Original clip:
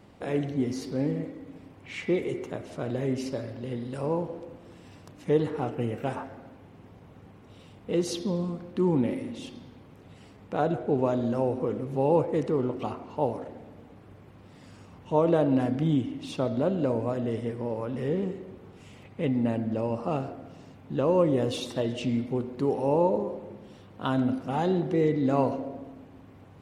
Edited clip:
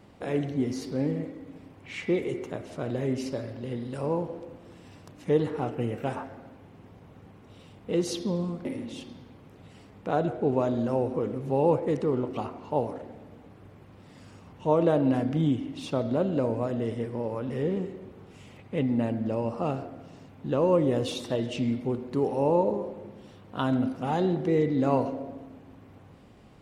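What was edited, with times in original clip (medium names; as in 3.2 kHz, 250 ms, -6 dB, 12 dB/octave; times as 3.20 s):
8.65–9.11 s: delete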